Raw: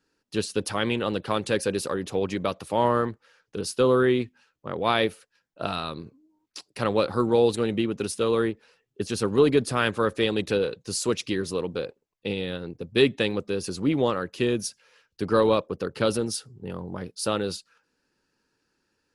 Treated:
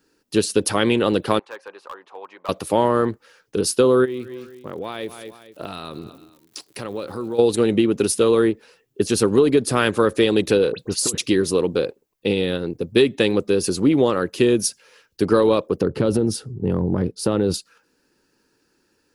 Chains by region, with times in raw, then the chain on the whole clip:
1.39–2.49 ladder band-pass 1100 Hz, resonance 55% + overloaded stage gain 34.5 dB
4.04–7.38 feedback echo 0.227 s, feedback 30%, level -22 dB + compressor 3:1, threshold -39 dBFS + crackle 150/s -52 dBFS
10.72–11.18 transient shaper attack -5 dB, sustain +1 dB + negative-ratio compressor -32 dBFS, ratio -0.5 + dispersion highs, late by 68 ms, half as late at 2500 Hz
15.81–17.54 HPF 56 Hz + tilt -3 dB/oct + compressor 4:1, threshold -23 dBFS
whole clip: bell 350 Hz +5.5 dB 1.2 oct; compressor 6:1, threshold -18 dBFS; high shelf 9700 Hz +11.5 dB; gain +6 dB

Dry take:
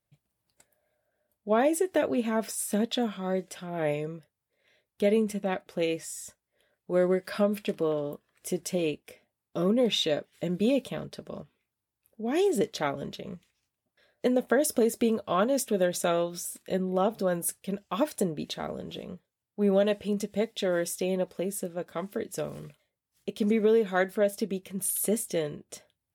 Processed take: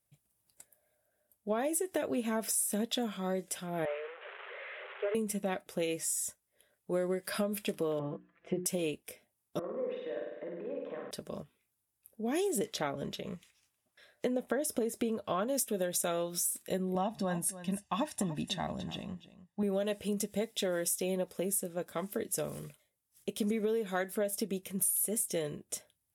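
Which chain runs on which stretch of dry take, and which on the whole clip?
3.85–5.15 delta modulation 16 kbps, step -34.5 dBFS + rippled Chebyshev high-pass 380 Hz, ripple 6 dB
7.99–8.66 LPF 2400 Hz 24 dB/oct + notches 60/120/180/240/300/360/420 Hz + comb 5.9 ms, depth 86%
9.59–11.11 compressor, threshold -39 dBFS + speaker cabinet 330–2000 Hz, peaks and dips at 330 Hz +4 dB, 500 Hz +8 dB, 1000 Hz +7 dB, 1800 Hz +6 dB + flutter echo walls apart 8.7 m, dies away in 1.1 s
12.65–15.48 LPF 3200 Hz 6 dB/oct + mismatched tape noise reduction encoder only
16.95–19.63 air absorption 71 m + comb 1.1 ms, depth 74% + echo 0.293 s -15.5 dB
whole clip: bell 11000 Hz +12 dB 1.3 oct; notch 4300 Hz, Q 16; compressor, threshold -27 dBFS; gain -2 dB

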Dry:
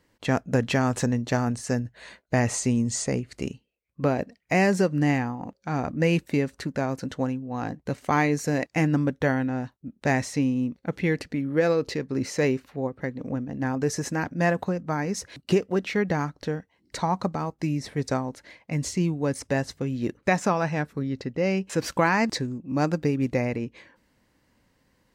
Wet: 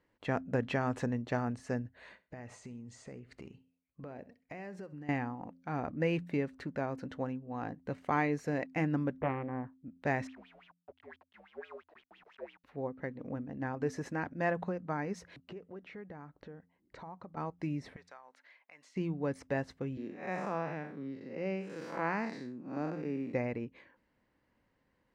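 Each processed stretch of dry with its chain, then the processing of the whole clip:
1.94–5.09 compressor, threshold -34 dBFS + feedback echo 66 ms, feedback 27%, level -18 dB
9.17–9.73 CVSD 32 kbps + LPF 1600 Hz 24 dB/oct + Doppler distortion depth 0.52 ms
10.27–12.64 level-crossing sampler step -29 dBFS + wah 5.9 Hz 610–3400 Hz, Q 8.8 + frequency shift -77 Hz
15.39–17.37 steep low-pass 8400 Hz + high shelf 2600 Hz -9 dB + compressor 3:1, threshold -39 dBFS
17.96–18.96 HPF 1000 Hz + high shelf 7700 Hz -6 dB + compressor 2:1, threshold -48 dBFS
19.97–23.34 time blur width 0.158 s + HPF 160 Hz 24 dB/oct
whole clip: tone controls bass -3 dB, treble -15 dB; de-hum 87.2 Hz, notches 3; gain -7.5 dB

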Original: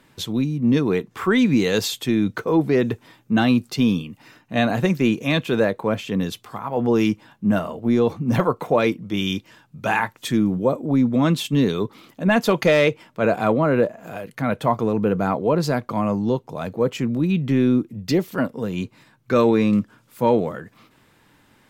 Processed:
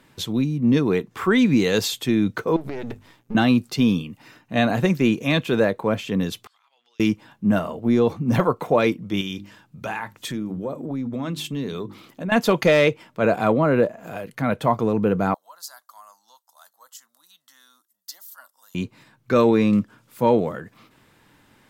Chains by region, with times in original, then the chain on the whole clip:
2.56–3.35 half-wave gain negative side -12 dB + notches 50/100/150/200/250 Hz + compressor 12:1, threshold -25 dBFS
6.47–7 ladder band-pass 4300 Hz, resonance 35% + compressor, threshold -58 dBFS
9.21–12.32 notches 50/100/150/200/250/300/350 Hz + compressor 3:1, threshold -27 dBFS
15.34–18.75 HPF 760 Hz + differentiator + fixed phaser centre 1000 Hz, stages 4
whole clip: dry

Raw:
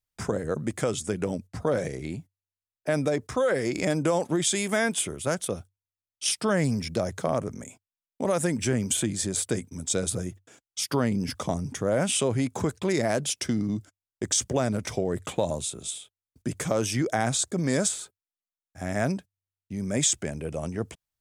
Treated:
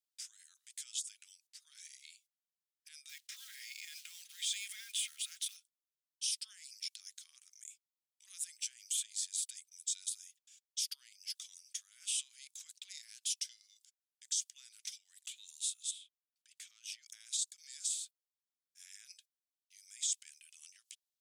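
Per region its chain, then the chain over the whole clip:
3.09–5.57 bell 1900 Hz +13.5 dB 2.1 oct + comb 3.7 ms, depth 45% + short-mantissa float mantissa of 2-bit
15.91–17.03 tone controls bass +11 dB, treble -11 dB + notches 50/100/150/200/250/300/350/400 Hz
whole clip: high shelf 6100 Hz -5 dB; limiter -23 dBFS; inverse Chebyshev high-pass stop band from 550 Hz, stop band 80 dB; gain -1 dB

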